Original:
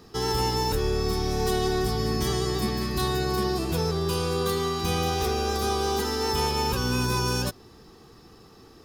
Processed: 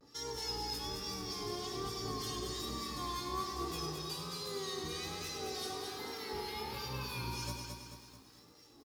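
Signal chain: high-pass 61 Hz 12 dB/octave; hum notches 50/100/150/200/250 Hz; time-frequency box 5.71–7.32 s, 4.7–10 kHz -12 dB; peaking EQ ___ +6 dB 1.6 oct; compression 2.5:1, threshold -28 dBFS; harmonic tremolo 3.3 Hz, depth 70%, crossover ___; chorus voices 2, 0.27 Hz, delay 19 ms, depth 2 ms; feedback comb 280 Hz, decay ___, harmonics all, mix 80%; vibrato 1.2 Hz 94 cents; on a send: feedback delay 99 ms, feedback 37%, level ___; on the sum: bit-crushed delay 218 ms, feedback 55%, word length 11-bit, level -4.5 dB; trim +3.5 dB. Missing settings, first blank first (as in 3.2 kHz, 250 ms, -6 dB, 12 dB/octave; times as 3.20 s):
5.5 kHz, 1.4 kHz, 0.18 s, -8.5 dB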